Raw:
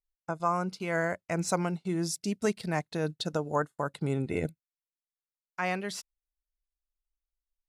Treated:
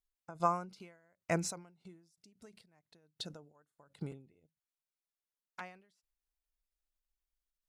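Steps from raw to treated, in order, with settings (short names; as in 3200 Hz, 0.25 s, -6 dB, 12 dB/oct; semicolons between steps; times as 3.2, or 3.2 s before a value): 4.11–5.61 envelope flanger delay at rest 10.4 ms, full sweep at -27.5 dBFS; ending taper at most 110 dB/s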